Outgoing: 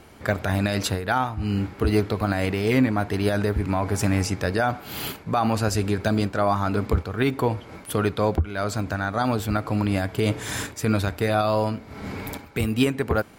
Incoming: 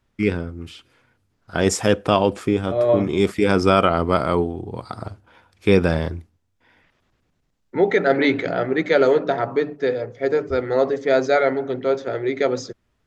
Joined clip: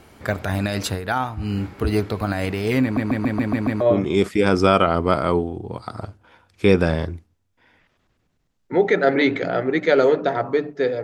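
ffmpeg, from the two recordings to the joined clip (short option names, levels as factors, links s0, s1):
-filter_complex "[0:a]apad=whole_dur=11.03,atrim=end=11.03,asplit=7[s0][s1][s2][s3][s4][s5][s6];[s0]atrim=end=2.972[s7];[s1]atrim=start=2.828:end=2.972[s8];[s2]atrim=start=2.828:end=2.972[s9];[s3]atrim=start=2.828:end=2.972[s10];[s4]atrim=start=2.828:end=2.972[s11];[s5]atrim=start=2.828:end=2.972[s12];[s6]atrim=start=2.828:end=2.972[s13];[1:a]atrim=start=2.838:end=10.06[s14];[s7][s8]acrossfade=d=0.004:c1=hsin:c2=hsin[s15];[s15][s9]acrossfade=d=0.004:c1=hsin:c2=hsin[s16];[s16][s10]acrossfade=d=0.004:c1=hsin:c2=hsin[s17];[s17][s11]acrossfade=d=0.004:c1=hsin:c2=hsin[s18];[s18][s12]acrossfade=d=0.004:c1=hsin:c2=hsin[s19];[s19][s13]acrossfade=d=0.004:c1=hsin:c2=hsin[s20];[s20][s14]acrossfade=d=0.004:c1=hsin:c2=hsin"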